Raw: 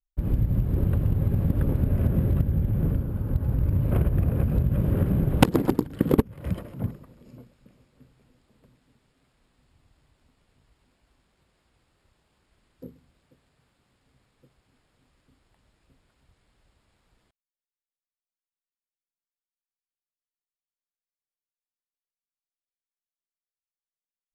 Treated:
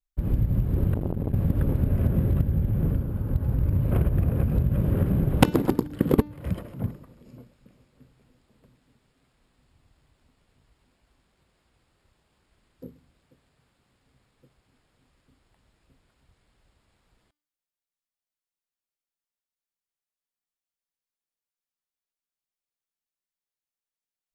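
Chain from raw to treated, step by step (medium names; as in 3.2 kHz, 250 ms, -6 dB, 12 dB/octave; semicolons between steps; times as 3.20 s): de-hum 296.8 Hz, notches 23; 0.94–1.34 s: transformer saturation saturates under 320 Hz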